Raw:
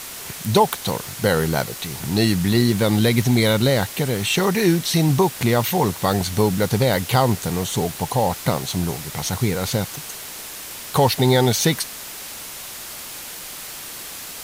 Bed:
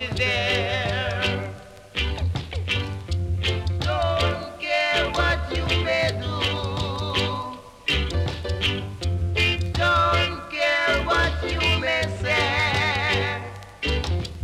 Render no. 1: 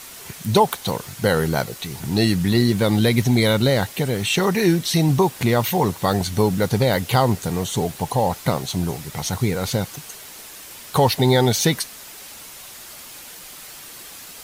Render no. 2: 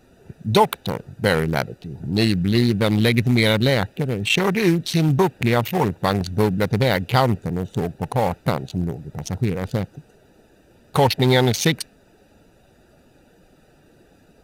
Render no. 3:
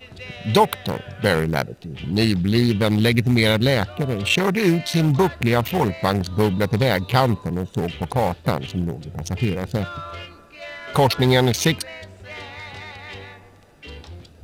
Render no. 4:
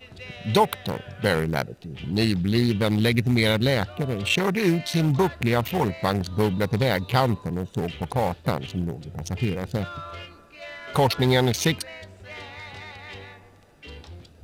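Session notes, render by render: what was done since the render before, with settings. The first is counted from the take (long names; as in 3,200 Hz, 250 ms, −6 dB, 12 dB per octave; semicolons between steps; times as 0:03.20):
broadband denoise 6 dB, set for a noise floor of −35 dBFS
adaptive Wiener filter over 41 samples; dynamic equaliser 2,400 Hz, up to +7 dB, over −41 dBFS, Q 1.1
mix in bed −14.5 dB
level −3.5 dB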